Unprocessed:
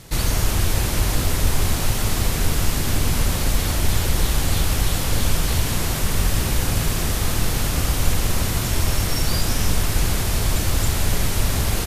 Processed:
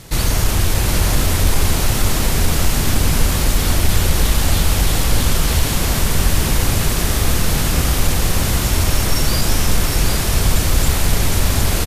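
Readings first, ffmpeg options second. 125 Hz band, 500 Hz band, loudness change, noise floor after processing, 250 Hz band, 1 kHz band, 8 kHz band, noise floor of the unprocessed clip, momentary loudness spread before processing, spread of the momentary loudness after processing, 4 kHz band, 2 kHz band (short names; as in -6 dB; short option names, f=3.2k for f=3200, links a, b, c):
+4.0 dB, +4.5 dB, +4.5 dB, -19 dBFS, +4.5 dB, +4.5 dB, +4.5 dB, -24 dBFS, 1 LU, 1 LU, +4.5 dB, +4.5 dB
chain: -af "acontrast=29,aecho=1:1:758:0.501,volume=-1dB"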